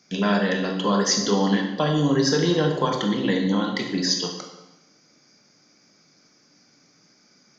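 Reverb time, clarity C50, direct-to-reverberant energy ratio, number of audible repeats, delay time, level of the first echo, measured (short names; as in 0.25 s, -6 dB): 1.0 s, 5.5 dB, 2.0 dB, none, none, none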